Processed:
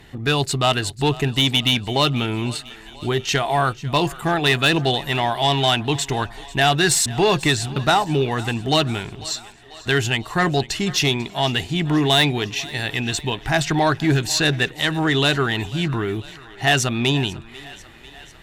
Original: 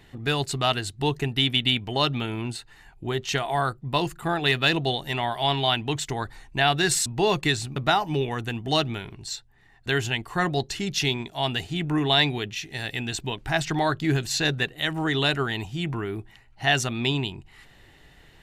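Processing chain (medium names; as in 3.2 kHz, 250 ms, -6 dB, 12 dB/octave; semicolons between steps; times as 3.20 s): Chebyshev shaper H 5 -18 dB, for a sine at -8 dBFS; thinning echo 494 ms, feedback 66%, high-pass 340 Hz, level -19 dB; trim +2.5 dB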